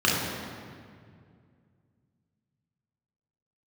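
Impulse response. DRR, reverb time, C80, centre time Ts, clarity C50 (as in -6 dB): -5.5 dB, 2.2 s, 2.0 dB, 105 ms, 0.0 dB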